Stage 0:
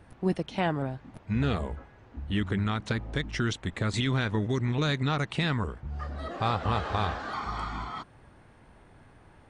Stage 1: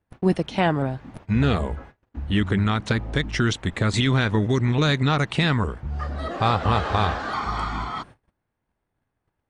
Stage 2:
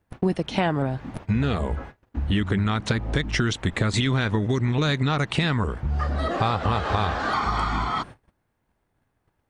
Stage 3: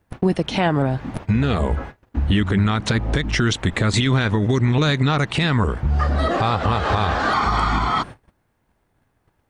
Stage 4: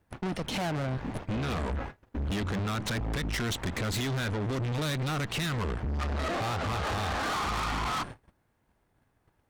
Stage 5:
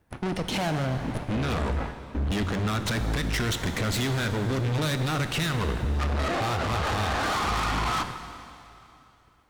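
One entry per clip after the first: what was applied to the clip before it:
gate -49 dBFS, range -31 dB; gain +7 dB
compressor 4:1, threshold -26 dBFS, peak gain reduction 10 dB; gain +5.5 dB
limiter -15.5 dBFS, peak gain reduction 5.5 dB; gain +6 dB
tube stage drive 29 dB, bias 0.75
plate-style reverb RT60 2.8 s, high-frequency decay 0.95×, DRR 8 dB; gain +3.5 dB

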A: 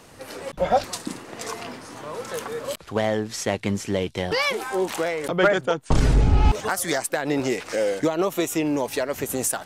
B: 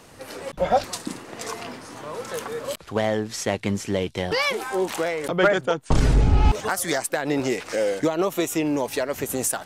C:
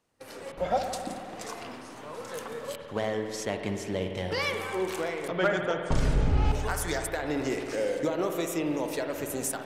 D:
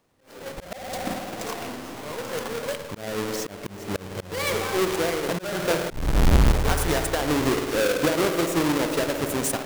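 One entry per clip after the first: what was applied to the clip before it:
nothing audible
gate -41 dBFS, range -20 dB; spring tank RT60 2.6 s, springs 53 ms, chirp 75 ms, DRR 4 dB; gain -7.5 dB
half-waves squared off; auto swell 0.355 s; gain +2.5 dB

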